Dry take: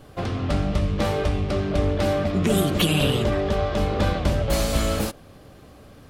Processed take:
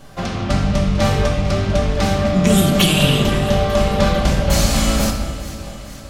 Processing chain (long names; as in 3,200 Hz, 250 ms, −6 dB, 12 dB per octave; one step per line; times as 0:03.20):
graphic EQ with 15 bands 100 Hz −4 dB, 400 Hz −8 dB, 6,300 Hz +6 dB
delay that swaps between a low-pass and a high-pass 224 ms, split 1,400 Hz, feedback 77%, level −12.5 dB
rectangular room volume 900 cubic metres, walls mixed, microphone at 1.2 metres
level +5 dB